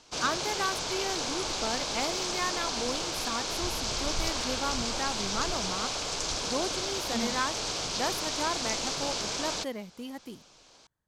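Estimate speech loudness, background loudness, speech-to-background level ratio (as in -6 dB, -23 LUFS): -35.5 LUFS, -31.0 LUFS, -4.5 dB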